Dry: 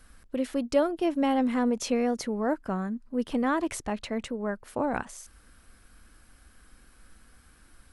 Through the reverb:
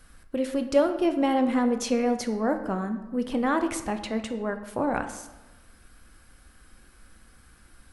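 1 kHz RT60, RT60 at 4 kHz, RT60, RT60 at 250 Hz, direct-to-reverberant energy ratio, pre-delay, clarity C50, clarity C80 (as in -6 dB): 1.1 s, 0.70 s, 1.1 s, 1.1 s, 7.0 dB, 3 ms, 10.0 dB, 12.0 dB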